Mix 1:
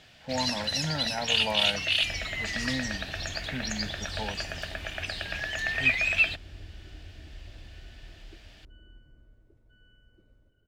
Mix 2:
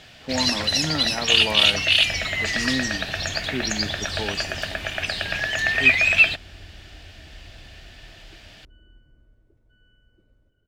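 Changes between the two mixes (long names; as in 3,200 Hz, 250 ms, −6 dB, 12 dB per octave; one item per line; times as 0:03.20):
speech: remove phaser with its sweep stopped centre 1,800 Hz, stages 8
first sound +8.0 dB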